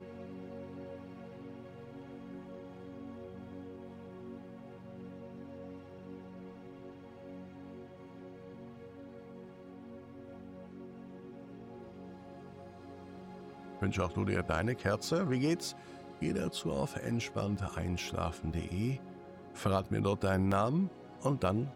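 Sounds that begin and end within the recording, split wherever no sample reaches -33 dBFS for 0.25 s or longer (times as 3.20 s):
13.82–15.69 s
16.22–18.96 s
19.63–20.87 s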